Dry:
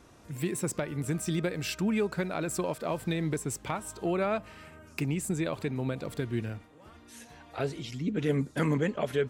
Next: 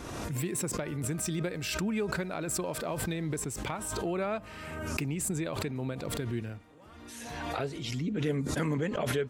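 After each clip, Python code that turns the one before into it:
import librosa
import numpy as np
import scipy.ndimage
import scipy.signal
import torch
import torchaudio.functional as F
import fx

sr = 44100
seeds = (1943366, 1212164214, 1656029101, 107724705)

y = fx.pre_swell(x, sr, db_per_s=29.0)
y = y * 10.0 ** (-3.5 / 20.0)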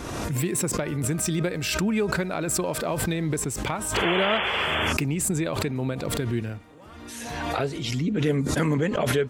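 y = fx.spec_paint(x, sr, seeds[0], shape='noise', start_s=3.94, length_s=0.99, low_hz=360.0, high_hz=3500.0, level_db=-33.0)
y = y * 10.0 ** (7.0 / 20.0)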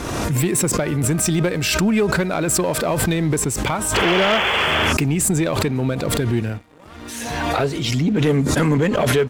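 y = fx.leveller(x, sr, passes=2)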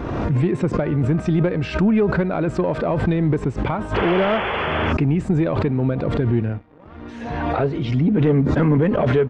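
y = fx.spacing_loss(x, sr, db_at_10k=42)
y = y * 10.0 ** (2.0 / 20.0)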